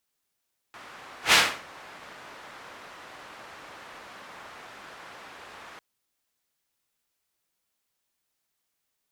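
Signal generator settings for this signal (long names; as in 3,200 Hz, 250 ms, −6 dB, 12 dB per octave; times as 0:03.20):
pass-by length 5.05 s, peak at 0:00.59, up 0.12 s, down 0.33 s, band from 1,300 Hz, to 2,600 Hz, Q 0.87, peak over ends 29 dB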